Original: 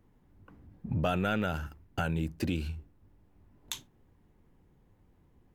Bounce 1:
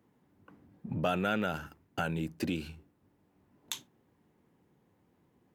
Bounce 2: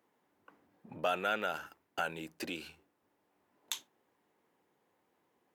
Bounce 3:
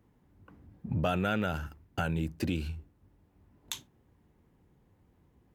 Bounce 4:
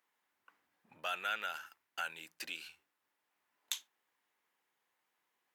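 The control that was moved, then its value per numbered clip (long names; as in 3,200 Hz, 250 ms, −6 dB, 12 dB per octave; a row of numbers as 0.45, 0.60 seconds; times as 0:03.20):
high-pass filter, corner frequency: 160, 490, 46, 1,400 Hertz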